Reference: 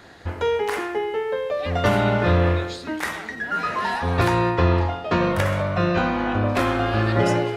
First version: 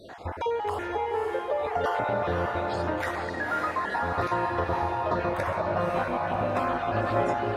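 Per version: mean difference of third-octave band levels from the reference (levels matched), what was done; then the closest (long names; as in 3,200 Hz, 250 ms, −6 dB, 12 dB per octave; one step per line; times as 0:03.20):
5.0 dB: time-frequency cells dropped at random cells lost 30%
parametric band 790 Hz +11.5 dB 2 octaves
downward compressor 2 to 1, threshold −31 dBFS, peak gain reduction 12.5 dB
feedback delay with all-pass diffusion 541 ms, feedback 44%, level −3.5 dB
level −3 dB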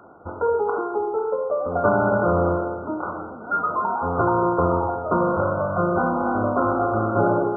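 11.0 dB: high-pass filter 280 Hz 6 dB per octave
flanger 2 Hz, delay 2.8 ms, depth 3.7 ms, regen −88%
linear-phase brick-wall low-pass 1,500 Hz
on a send: delay that swaps between a low-pass and a high-pass 246 ms, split 1,000 Hz, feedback 65%, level −12 dB
on the sum: level +7 dB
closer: first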